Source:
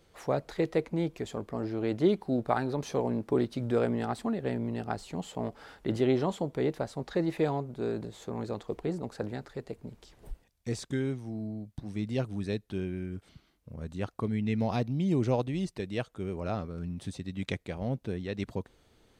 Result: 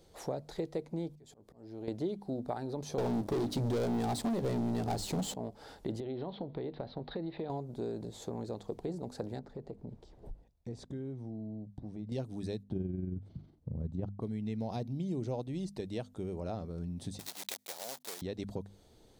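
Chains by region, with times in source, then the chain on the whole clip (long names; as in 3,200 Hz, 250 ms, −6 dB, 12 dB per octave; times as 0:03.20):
0:01.10–0:01.88: high-shelf EQ 5,800 Hz +4.5 dB + downward compressor 2 to 1, threshold −51 dBFS + volume swells 282 ms
0:02.98–0:05.34: mains-hum notches 50/100/150/200/250/300 Hz + leveller curve on the samples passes 5
0:06.00–0:07.50: elliptic low-pass filter 4,100 Hz, stop band 50 dB + downward compressor 5 to 1, threshold −32 dBFS
0:09.39–0:12.12: low-pass filter 1,100 Hz 6 dB per octave + downward compressor 3 to 1, threshold −41 dBFS
0:12.63–0:14.22: high-pass filter 100 Hz + spectral tilt −4.5 dB per octave + amplitude modulation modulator 22 Hz, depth 30%
0:17.19–0:18.22: one scale factor per block 3 bits + high-pass filter 890 Hz + high-shelf EQ 6,300 Hz +6 dB
whole clip: flat-topped bell 1,800 Hz −8 dB; mains-hum notches 50/100/150/200/250 Hz; downward compressor 3 to 1, threshold −39 dBFS; level +2.5 dB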